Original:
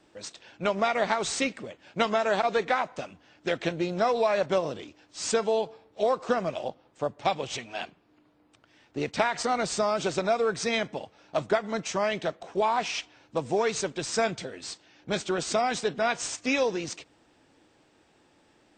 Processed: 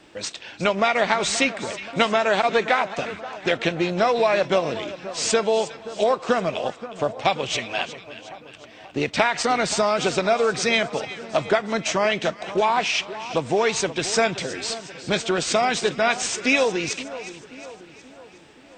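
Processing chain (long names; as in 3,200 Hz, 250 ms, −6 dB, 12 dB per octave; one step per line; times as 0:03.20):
parametric band 2,600 Hz +5 dB 1.2 octaves
in parallel at +1.5 dB: downward compressor, threshold −35 dBFS, peak gain reduction 15.5 dB
on the sum: echo with a time of its own for lows and highs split 1,400 Hz, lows 528 ms, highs 362 ms, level −14 dB
level +2.5 dB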